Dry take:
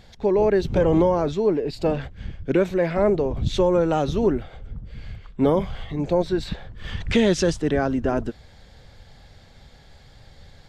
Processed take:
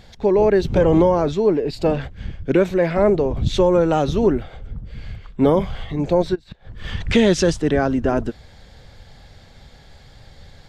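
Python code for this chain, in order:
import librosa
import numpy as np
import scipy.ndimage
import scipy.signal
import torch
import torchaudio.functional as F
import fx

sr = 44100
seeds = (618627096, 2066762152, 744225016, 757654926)

y = fx.gate_flip(x, sr, shuts_db=-21.0, range_db=-25, at=(6.34, 6.81), fade=0.02)
y = y * librosa.db_to_amplitude(3.5)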